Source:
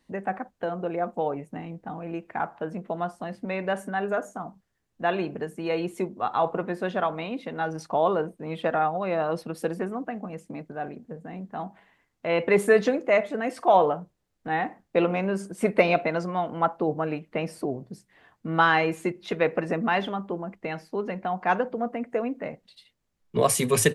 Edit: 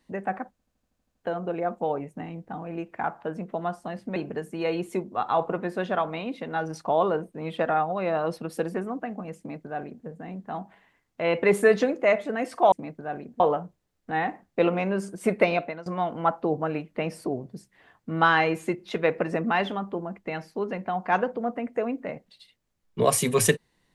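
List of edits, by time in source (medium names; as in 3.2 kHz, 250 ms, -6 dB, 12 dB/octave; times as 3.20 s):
0.51 s: stutter 0.08 s, 9 plays
3.52–5.21 s: delete
10.43–11.11 s: copy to 13.77 s
15.56–16.23 s: fade out equal-power, to -20.5 dB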